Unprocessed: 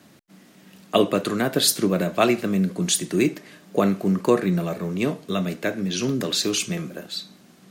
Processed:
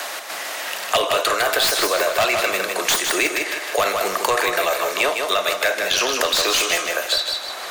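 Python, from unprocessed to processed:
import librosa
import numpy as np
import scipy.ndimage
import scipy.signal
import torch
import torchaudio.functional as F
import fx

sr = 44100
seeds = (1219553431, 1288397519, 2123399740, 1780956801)

p1 = fx.tracing_dist(x, sr, depth_ms=0.096)
p2 = scipy.signal.sosfilt(scipy.signal.butter(4, 620.0, 'highpass', fs=sr, output='sos'), p1)
p3 = fx.over_compress(p2, sr, threshold_db=-32.0, ratio=-0.5)
p4 = p2 + F.gain(torch.from_numpy(p3), -3.0).numpy()
p5 = np.clip(p4, -10.0 ** (-19.5 / 20.0), 10.0 ** (-19.5 / 20.0))
p6 = p5 + fx.echo_feedback(p5, sr, ms=156, feedback_pct=29, wet_db=-6.0, dry=0)
p7 = fx.band_squash(p6, sr, depth_pct=70)
y = F.gain(torch.from_numpy(p7), 7.0).numpy()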